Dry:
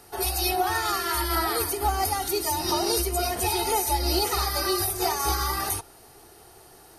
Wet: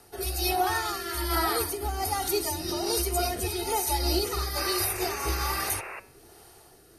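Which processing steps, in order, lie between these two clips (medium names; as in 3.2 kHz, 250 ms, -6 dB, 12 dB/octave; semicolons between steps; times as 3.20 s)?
rotary cabinet horn 1.2 Hz; painted sound noise, 4.57–6.00 s, 340–2800 Hz -39 dBFS; de-hum 188.5 Hz, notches 21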